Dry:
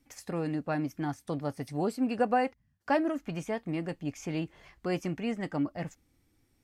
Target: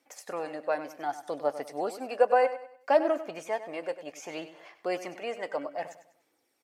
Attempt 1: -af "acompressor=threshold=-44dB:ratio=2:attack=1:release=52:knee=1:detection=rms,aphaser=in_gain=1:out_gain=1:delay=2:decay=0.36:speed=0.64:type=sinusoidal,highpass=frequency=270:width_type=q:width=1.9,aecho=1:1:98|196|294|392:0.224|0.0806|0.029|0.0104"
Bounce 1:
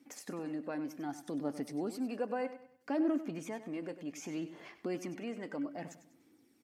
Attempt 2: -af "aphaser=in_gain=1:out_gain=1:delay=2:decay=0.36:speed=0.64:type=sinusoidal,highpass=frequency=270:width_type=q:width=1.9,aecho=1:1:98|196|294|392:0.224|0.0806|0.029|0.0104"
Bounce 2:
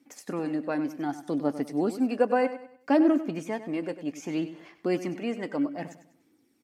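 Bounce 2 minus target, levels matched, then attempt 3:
250 Hz band +11.5 dB
-af "aphaser=in_gain=1:out_gain=1:delay=2:decay=0.36:speed=0.64:type=sinusoidal,highpass=frequency=570:width_type=q:width=1.9,aecho=1:1:98|196|294|392:0.224|0.0806|0.029|0.0104"

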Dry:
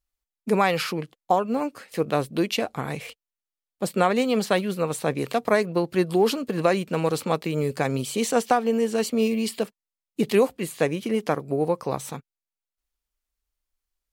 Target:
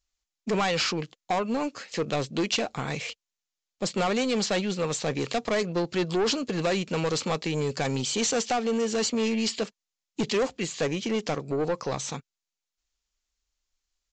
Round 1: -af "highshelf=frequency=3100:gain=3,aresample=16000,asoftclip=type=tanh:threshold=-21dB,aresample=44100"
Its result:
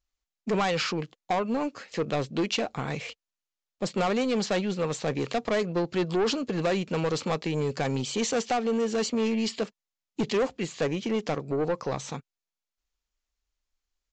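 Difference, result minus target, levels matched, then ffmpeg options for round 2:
8,000 Hz band −5.0 dB
-af "highshelf=frequency=3100:gain=11.5,aresample=16000,asoftclip=type=tanh:threshold=-21dB,aresample=44100"

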